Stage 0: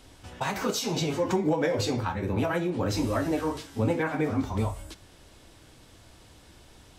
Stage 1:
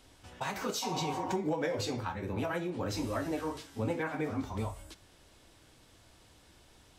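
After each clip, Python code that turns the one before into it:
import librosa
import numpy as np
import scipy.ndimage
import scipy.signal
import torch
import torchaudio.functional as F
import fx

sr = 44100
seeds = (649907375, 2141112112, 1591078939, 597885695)

y = fx.spec_repair(x, sr, seeds[0], start_s=0.85, length_s=0.46, low_hz=500.0, high_hz=1400.0, source='after')
y = fx.low_shelf(y, sr, hz=410.0, db=-3.0)
y = y * librosa.db_to_amplitude(-5.5)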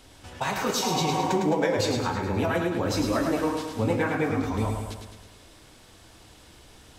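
y = fx.echo_feedback(x, sr, ms=106, feedback_pct=55, wet_db=-5.5)
y = y * librosa.db_to_amplitude(7.5)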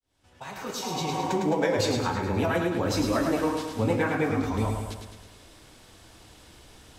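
y = fx.fade_in_head(x, sr, length_s=1.75)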